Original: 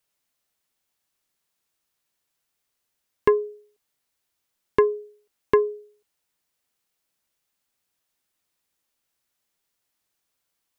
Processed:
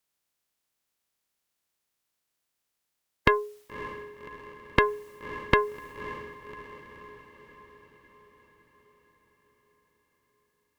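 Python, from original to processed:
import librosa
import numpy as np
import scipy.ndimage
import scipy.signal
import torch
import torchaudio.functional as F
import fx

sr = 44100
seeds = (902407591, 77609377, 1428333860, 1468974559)

y = fx.spec_clip(x, sr, under_db=23)
y = fx.echo_diffused(y, sr, ms=575, feedback_pct=57, wet_db=-13.0)
y = fx.cheby_harmonics(y, sr, harmonics=(2,), levels_db=(-10,), full_scale_db=-1.5)
y = F.gain(torch.from_numpy(y), -2.5).numpy()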